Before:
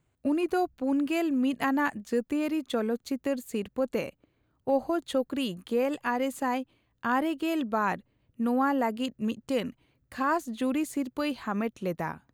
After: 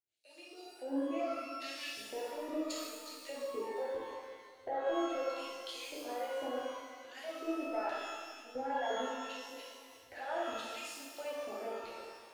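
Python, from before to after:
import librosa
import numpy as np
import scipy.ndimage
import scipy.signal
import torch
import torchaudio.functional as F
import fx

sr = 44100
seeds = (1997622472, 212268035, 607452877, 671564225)

p1 = fx.lower_of_two(x, sr, delay_ms=0.44, at=(1.44, 2.76))
p2 = fx.recorder_agc(p1, sr, target_db=-20.5, rise_db_per_s=36.0, max_gain_db=30)
p3 = fx.harmonic_tremolo(p2, sr, hz=2.0, depth_pct=100, crossover_hz=620.0)
p4 = fx.filter_lfo_bandpass(p3, sr, shape='square', hz=0.76, low_hz=730.0, high_hz=4400.0, q=1.8)
p5 = fx.fixed_phaser(p4, sr, hz=460.0, stages=4)
p6 = 10.0 ** (-31.0 / 20.0) * np.tanh(p5 / 10.0 ** (-31.0 / 20.0))
p7 = p6 + fx.echo_feedback(p6, sr, ms=354, feedback_pct=41, wet_db=-15.0, dry=0)
p8 = fx.rev_shimmer(p7, sr, seeds[0], rt60_s=1.3, semitones=12, shimmer_db=-8, drr_db=-6.5)
y = p8 * 10.0 ** (-1.0 / 20.0)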